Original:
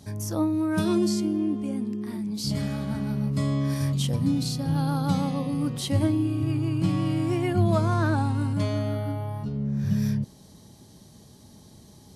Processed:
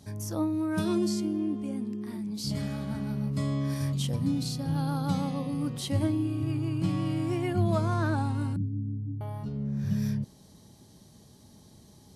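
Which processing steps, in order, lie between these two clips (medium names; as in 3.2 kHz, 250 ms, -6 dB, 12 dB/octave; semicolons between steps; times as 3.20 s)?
8.56–9.21 s: inverse Chebyshev low-pass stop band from 570 Hz, stop band 40 dB; trim -4 dB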